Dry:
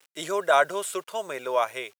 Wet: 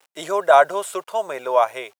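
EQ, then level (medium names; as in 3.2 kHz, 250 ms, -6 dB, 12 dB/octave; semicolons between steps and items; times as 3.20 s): peaking EQ 770 Hz +9.5 dB 1.3 oct; 0.0 dB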